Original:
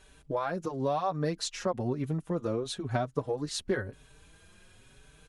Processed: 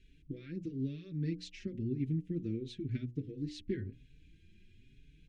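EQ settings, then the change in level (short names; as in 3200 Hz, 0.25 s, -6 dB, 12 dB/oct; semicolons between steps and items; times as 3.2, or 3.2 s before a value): elliptic band-stop 330–2200 Hz, stop band 80 dB; tape spacing loss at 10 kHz 29 dB; notches 60/120/180/240/300/360/420/480/540 Hz; 0.0 dB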